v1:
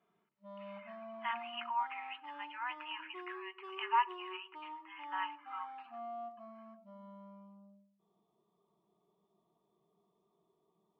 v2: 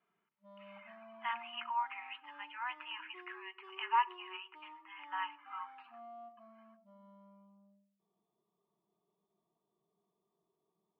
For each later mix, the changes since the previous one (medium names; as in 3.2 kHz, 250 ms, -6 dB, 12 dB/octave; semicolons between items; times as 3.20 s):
background -7.0 dB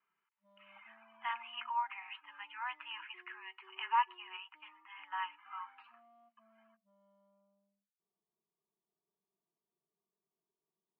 background -9.5 dB; reverb: off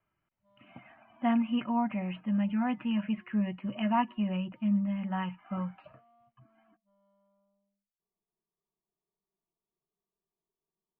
speech: remove steep high-pass 840 Hz 96 dB/octave; background: remove high-pass 140 Hz